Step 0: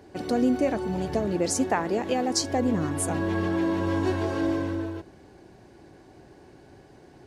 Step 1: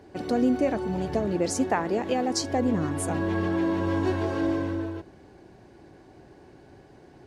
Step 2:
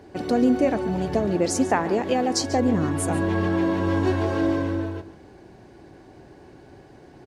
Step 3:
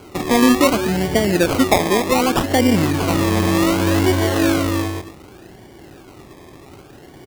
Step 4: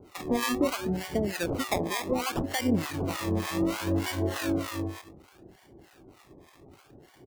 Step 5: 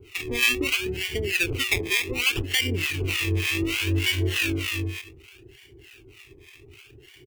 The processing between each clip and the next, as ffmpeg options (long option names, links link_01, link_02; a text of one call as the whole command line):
ffmpeg -i in.wav -af "highshelf=frequency=5200:gain=-5.5" out.wav
ffmpeg -i in.wav -af "aecho=1:1:141:0.168,volume=3.5dB" out.wav
ffmpeg -i in.wav -af "acrusher=samples=24:mix=1:aa=0.000001:lfo=1:lforange=14.4:lforate=0.66,volume=6dB" out.wav
ffmpeg -i in.wav -filter_complex "[0:a]acrossover=split=760[link_01][link_02];[link_01]aeval=exprs='val(0)*(1-1/2+1/2*cos(2*PI*3.3*n/s))':channel_layout=same[link_03];[link_02]aeval=exprs='val(0)*(1-1/2-1/2*cos(2*PI*3.3*n/s))':channel_layout=same[link_04];[link_03][link_04]amix=inputs=2:normalize=0,volume=-8dB" out.wav
ffmpeg -i in.wav -af "firequalizer=gain_entry='entry(120,0);entry(180,-21);entry(400,-1);entry(570,-23);entry(2600,12);entry(3900,-1)':delay=0.05:min_phase=1,volume=7dB" out.wav